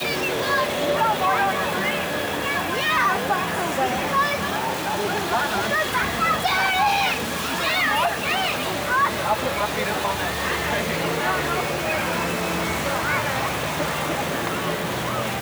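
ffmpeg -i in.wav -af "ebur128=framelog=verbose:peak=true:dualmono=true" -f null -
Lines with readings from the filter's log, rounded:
Integrated loudness:
  I:         -19.2 LUFS
  Threshold: -29.1 LUFS
Loudness range:
  LRA:         2.5 LU
  Threshold: -39.0 LUFS
  LRA low:   -20.2 LUFS
  LRA high:  -17.7 LUFS
True peak:
  Peak:      -10.4 dBFS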